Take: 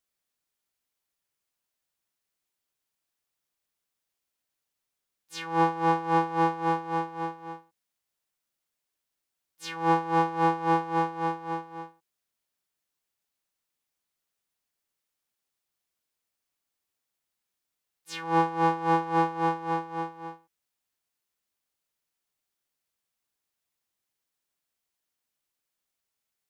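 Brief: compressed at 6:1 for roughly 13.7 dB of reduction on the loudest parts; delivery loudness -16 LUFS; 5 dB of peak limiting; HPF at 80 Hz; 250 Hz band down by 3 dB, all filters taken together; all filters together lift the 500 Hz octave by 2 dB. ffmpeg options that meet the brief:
-af "highpass=80,equalizer=f=250:t=o:g=-7.5,equalizer=f=500:t=o:g=4,acompressor=threshold=-33dB:ratio=6,volume=23dB,alimiter=limit=-5dB:level=0:latency=1"

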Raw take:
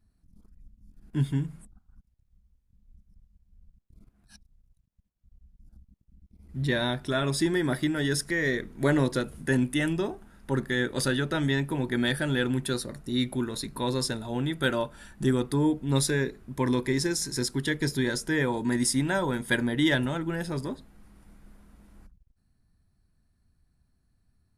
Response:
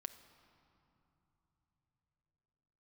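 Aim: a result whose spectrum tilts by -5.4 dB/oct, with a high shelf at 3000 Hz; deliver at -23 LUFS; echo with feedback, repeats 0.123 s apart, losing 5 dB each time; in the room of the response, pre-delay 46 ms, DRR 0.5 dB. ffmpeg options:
-filter_complex "[0:a]highshelf=f=3k:g=-6,aecho=1:1:123|246|369|492|615|738|861:0.562|0.315|0.176|0.0988|0.0553|0.031|0.0173,asplit=2[a][b];[1:a]atrim=start_sample=2205,adelay=46[c];[b][c]afir=irnorm=-1:irlink=0,volume=3.5dB[d];[a][d]amix=inputs=2:normalize=0,volume=1.5dB"

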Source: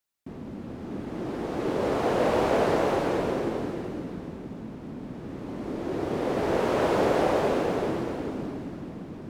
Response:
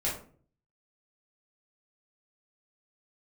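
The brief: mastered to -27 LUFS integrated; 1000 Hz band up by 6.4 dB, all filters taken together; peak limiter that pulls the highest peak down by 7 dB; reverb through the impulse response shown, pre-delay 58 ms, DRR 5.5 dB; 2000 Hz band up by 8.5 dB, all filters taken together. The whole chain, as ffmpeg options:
-filter_complex "[0:a]equalizer=f=1k:t=o:g=6.5,equalizer=f=2k:t=o:g=8.5,alimiter=limit=-15.5dB:level=0:latency=1,asplit=2[a][b];[1:a]atrim=start_sample=2205,adelay=58[c];[b][c]afir=irnorm=-1:irlink=0,volume=-12.5dB[d];[a][d]amix=inputs=2:normalize=0,volume=-1dB"

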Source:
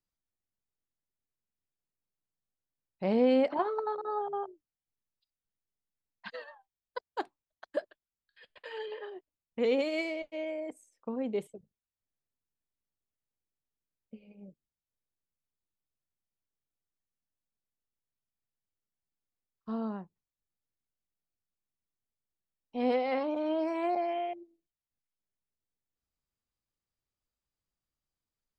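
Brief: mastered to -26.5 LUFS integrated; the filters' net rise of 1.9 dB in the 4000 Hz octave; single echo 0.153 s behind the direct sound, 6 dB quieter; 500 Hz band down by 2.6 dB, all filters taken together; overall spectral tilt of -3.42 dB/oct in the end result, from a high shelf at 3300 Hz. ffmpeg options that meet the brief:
-af "equalizer=f=500:t=o:g=-3,highshelf=f=3.3k:g=-4,equalizer=f=4k:t=o:g=5.5,aecho=1:1:153:0.501,volume=7.5dB"

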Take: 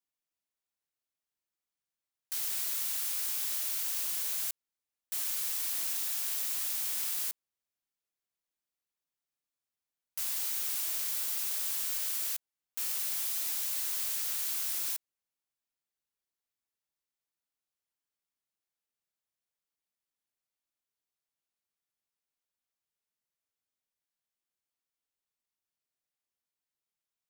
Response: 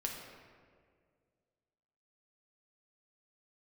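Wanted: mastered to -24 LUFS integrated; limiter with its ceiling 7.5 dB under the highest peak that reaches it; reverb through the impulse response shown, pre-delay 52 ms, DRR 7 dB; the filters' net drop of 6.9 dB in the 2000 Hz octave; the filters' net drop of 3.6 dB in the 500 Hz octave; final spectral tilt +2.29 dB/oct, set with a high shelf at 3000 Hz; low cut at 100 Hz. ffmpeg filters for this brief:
-filter_complex "[0:a]highpass=100,equalizer=f=500:t=o:g=-4,equalizer=f=2k:t=o:g=-6.5,highshelf=f=3k:g=-5.5,alimiter=level_in=8.5dB:limit=-24dB:level=0:latency=1,volume=-8.5dB,asplit=2[a][b];[1:a]atrim=start_sample=2205,adelay=52[c];[b][c]afir=irnorm=-1:irlink=0,volume=-8dB[d];[a][d]amix=inputs=2:normalize=0,volume=15dB"

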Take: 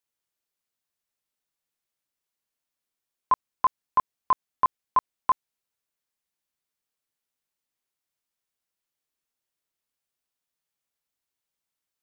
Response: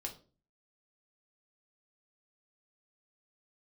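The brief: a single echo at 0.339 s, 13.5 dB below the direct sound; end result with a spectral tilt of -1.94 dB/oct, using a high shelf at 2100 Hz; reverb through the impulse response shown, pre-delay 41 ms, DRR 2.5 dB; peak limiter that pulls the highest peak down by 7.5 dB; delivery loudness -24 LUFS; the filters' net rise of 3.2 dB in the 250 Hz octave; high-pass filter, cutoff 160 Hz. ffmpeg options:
-filter_complex "[0:a]highpass=160,equalizer=f=250:t=o:g=5,highshelf=f=2.1k:g=5.5,alimiter=limit=-18.5dB:level=0:latency=1,aecho=1:1:339:0.211,asplit=2[a][b];[1:a]atrim=start_sample=2205,adelay=41[c];[b][c]afir=irnorm=-1:irlink=0,volume=-1dB[d];[a][d]amix=inputs=2:normalize=0,volume=7dB"

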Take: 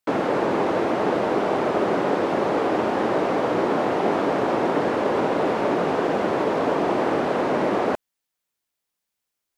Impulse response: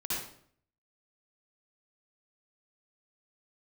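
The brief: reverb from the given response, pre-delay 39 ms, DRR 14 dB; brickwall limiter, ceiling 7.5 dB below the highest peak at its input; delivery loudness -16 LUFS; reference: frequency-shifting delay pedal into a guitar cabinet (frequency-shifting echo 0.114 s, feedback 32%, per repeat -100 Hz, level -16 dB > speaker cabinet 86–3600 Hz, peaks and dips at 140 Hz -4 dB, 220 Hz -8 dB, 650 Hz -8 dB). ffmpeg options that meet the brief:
-filter_complex "[0:a]alimiter=limit=-16dB:level=0:latency=1,asplit=2[a][b];[1:a]atrim=start_sample=2205,adelay=39[c];[b][c]afir=irnorm=-1:irlink=0,volume=-19dB[d];[a][d]amix=inputs=2:normalize=0,asplit=4[e][f][g][h];[f]adelay=114,afreqshift=-100,volume=-16dB[i];[g]adelay=228,afreqshift=-200,volume=-25.9dB[j];[h]adelay=342,afreqshift=-300,volume=-35.8dB[k];[e][i][j][k]amix=inputs=4:normalize=0,highpass=86,equalizer=f=140:t=q:w=4:g=-4,equalizer=f=220:t=q:w=4:g=-8,equalizer=f=650:t=q:w=4:g=-8,lowpass=f=3.6k:w=0.5412,lowpass=f=3.6k:w=1.3066,volume=11dB"

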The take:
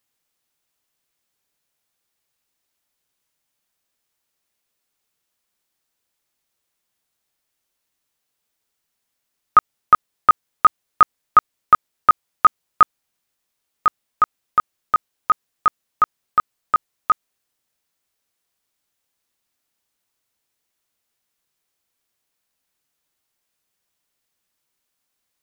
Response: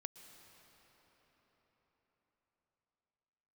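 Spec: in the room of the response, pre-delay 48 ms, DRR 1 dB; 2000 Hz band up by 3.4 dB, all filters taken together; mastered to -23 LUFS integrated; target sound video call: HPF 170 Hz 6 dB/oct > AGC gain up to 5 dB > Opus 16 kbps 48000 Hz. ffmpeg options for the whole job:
-filter_complex "[0:a]equalizer=f=2k:t=o:g=5,asplit=2[a][b];[1:a]atrim=start_sample=2205,adelay=48[c];[b][c]afir=irnorm=-1:irlink=0,volume=3.5dB[d];[a][d]amix=inputs=2:normalize=0,highpass=f=170:p=1,dynaudnorm=m=5dB,volume=-6.5dB" -ar 48000 -c:a libopus -b:a 16k

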